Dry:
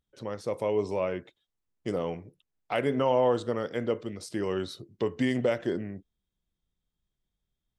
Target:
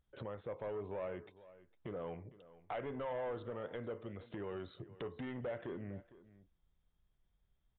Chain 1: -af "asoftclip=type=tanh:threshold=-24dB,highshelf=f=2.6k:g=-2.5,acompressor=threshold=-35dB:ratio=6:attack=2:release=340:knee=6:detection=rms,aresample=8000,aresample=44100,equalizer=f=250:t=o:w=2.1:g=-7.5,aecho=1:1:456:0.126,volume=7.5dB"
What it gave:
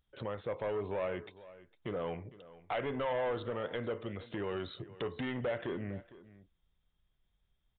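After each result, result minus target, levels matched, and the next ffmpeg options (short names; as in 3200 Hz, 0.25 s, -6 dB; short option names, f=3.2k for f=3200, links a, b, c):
compressor: peak gain reduction -5.5 dB; 4000 Hz band +5.0 dB
-af "asoftclip=type=tanh:threshold=-24dB,highshelf=f=2.6k:g=-2.5,acompressor=threshold=-42dB:ratio=6:attack=2:release=340:knee=6:detection=rms,aresample=8000,aresample=44100,equalizer=f=250:t=o:w=2.1:g=-7.5,aecho=1:1:456:0.126,volume=7.5dB"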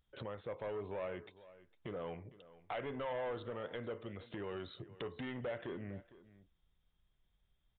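4000 Hz band +5.5 dB
-af "asoftclip=type=tanh:threshold=-24dB,highshelf=f=2.6k:g=-13.5,acompressor=threshold=-42dB:ratio=6:attack=2:release=340:knee=6:detection=rms,aresample=8000,aresample=44100,equalizer=f=250:t=o:w=2.1:g=-7.5,aecho=1:1:456:0.126,volume=7.5dB"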